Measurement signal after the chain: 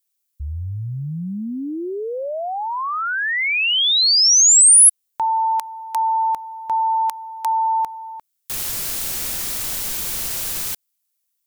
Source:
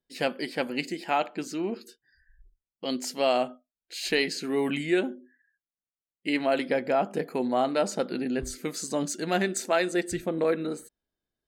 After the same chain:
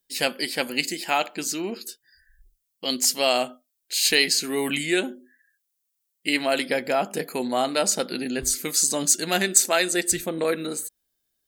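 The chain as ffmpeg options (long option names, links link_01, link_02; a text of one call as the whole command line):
ffmpeg -i in.wav -af "crystalizer=i=5.5:c=0" out.wav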